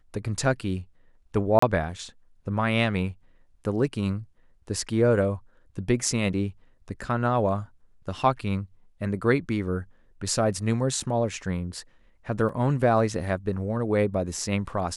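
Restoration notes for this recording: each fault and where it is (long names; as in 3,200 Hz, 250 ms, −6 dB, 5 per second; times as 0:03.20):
0:01.59–0:01.62: drop-out 34 ms
0:11.00: drop-out 4.3 ms
0:12.49: drop-out 2.8 ms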